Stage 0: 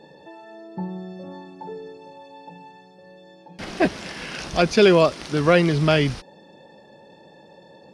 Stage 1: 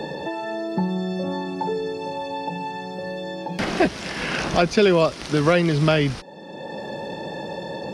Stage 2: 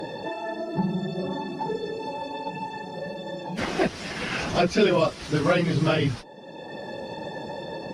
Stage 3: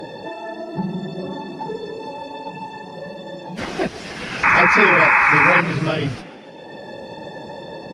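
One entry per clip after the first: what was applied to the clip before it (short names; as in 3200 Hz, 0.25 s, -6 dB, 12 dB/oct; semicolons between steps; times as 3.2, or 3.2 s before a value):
three-band squash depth 70%; gain +2.5 dB
phase scrambler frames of 50 ms; added harmonics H 8 -38 dB, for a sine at -4.5 dBFS; gain -3.5 dB
painted sound noise, 4.43–5.61, 810–2600 Hz -15 dBFS; frequency-shifting echo 0.142 s, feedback 61%, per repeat +51 Hz, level -17 dB; gain +1 dB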